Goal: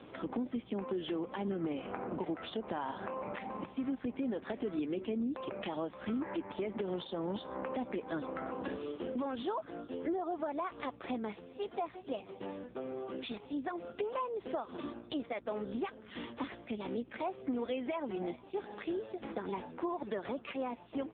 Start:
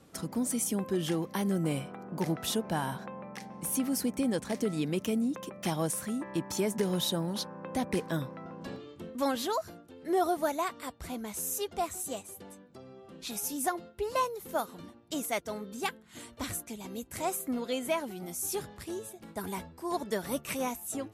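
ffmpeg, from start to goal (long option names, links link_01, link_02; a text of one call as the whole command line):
ffmpeg -i in.wav -filter_complex "[0:a]highpass=frequency=230:width=0.5412,highpass=frequency=230:width=1.3066,asplit=3[link_01][link_02][link_03];[link_01]afade=type=out:start_time=4.35:duration=0.02[link_04];[link_02]bandreject=frequency=373.9:width_type=h:width=4,bandreject=frequency=747.8:width_type=h:width=4,bandreject=frequency=1121.7:width_type=h:width=4,bandreject=frequency=1495.6:width_type=h:width=4,bandreject=frequency=1869.5:width_type=h:width=4,bandreject=frequency=2243.4:width_type=h:width=4,afade=type=in:start_time=4.35:duration=0.02,afade=type=out:start_time=6.84:duration=0.02[link_05];[link_03]afade=type=in:start_time=6.84:duration=0.02[link_06];[link_04][link_05][link_06]amix=inputs=3:normalize=0,alimiter=level_in=4dB:limit=-24dB:level=0:latency=1:release=190,volume=-4dB,acompressor=threshold=-46dB:ratio=4,aeval=exprs='val(0)+0.000501*(sin(2*PI*60*n/s)+sin(2*PI*2*60*n/s)/2+sin(2*PI*3*60*n/s)/3+sin(2*PI*4*60*n/s)/4+sin(2*PI*5*60*n/s)/5)':channel_layout=same,aecho=1:1:438:0.0708,volume=12dB" -ar 8000 -c:a libopencore_amrnb -b:a 5150 out.amr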